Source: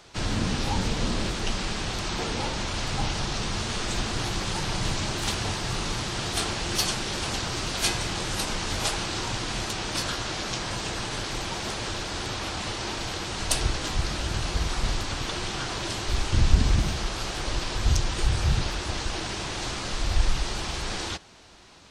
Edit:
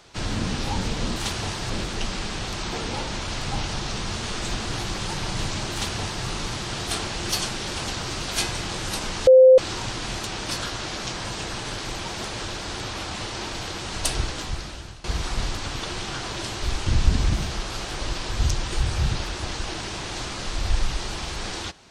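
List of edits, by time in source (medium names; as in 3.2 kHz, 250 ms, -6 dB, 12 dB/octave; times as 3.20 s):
5.18–5.72 s: copy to 1.16 s
8.73–9.04 s: bleep 518 Hz -7.5 dBFS
13.71–14.50 s: fade out, to -20 dB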